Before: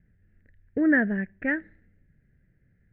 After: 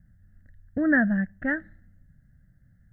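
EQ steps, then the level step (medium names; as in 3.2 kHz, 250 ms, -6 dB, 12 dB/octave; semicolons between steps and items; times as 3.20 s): peaking EQ 950 Hz -9 dB 0.34 oct; static phaser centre 1 kHz, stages 4; +7.0 dB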